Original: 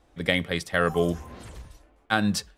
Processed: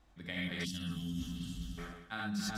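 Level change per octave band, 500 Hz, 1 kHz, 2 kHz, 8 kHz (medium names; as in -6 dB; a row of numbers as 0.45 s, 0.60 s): -24.0 dB, -16.5 dB, -14.0 dB, -9.5 dB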